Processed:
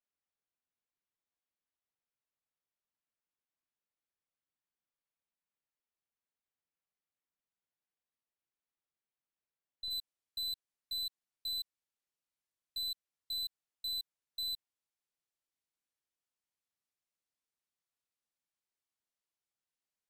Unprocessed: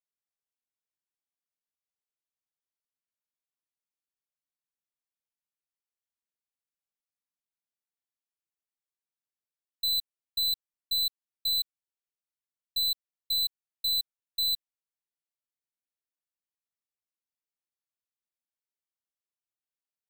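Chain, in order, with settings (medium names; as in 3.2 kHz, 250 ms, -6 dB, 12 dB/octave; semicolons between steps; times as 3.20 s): Bessel low-pass 2.6 kHz, order 2, from 9.90 s 11 kHz; peak limiter -36 dBFS, peak gain reduction 10.5 dB; trim +1 dB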